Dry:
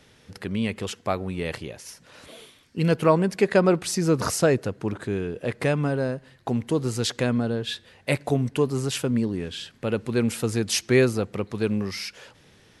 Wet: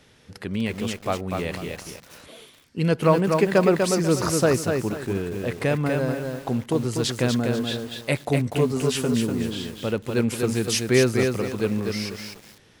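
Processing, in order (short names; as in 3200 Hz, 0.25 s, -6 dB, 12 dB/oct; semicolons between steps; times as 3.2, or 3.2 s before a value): 8.46–9.12 doubler 12 ms -5 dB; lo-fi delay 0.245 s, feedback 35%, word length 7-bit, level -4 dB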